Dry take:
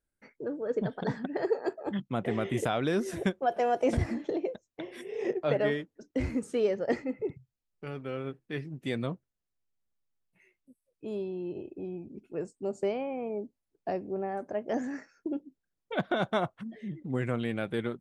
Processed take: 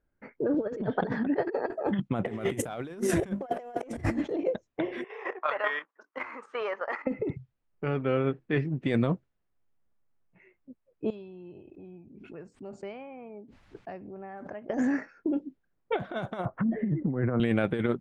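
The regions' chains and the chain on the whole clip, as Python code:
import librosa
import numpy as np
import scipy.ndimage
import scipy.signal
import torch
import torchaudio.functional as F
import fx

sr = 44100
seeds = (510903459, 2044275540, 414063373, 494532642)

y = fx.chain(x, sr, fx.lowpass(hz=5000.0, slope=24),
    fx.dynamic_eq(hz=340.0, q=3.0, threshold_db=-38.0, ratio=4.0, max_db=3),
    fx.band_squash(depth_pct=70), at=(0.54, 1.73))
y = fx.chain(y, sr, fx.hum_notches(base_hz=50, count=5),
    fx.leveller(passes=1), at=(2.27, 4.32))
y = fx.chain(y, sr, fx.highpass_res(hz=1100.0, q=4.3),
    fx.level_steps(step_db=10), at=(5.04, 7.07))
y = fx.chain(y, sr, fx.tone_stack(knobs='5-5-5'),
    fx.pre_swell(db_per_s=37.0), at=(11.1, 14.7))
y = fx.chain(y, sr, fx.lowpass(hz=1600.0, slope=24),
    fx.band_squash(depth_pct=70), at=(16.45, 17.4))
y = fx.env_lowpass(y, sr, base_hz=1600.0, full_db=-24.0)
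y = fx.dynamic_eq(y, sr, hz=4500.0, q=1.2, threshold_db=-58.0, ratio=4.0, max_db=-7)
y = fx.over_compress(y, sr, threshold_db=-33.0, ratio=-0.5)
y = y * 10.0 ** (5.5 / 20.0)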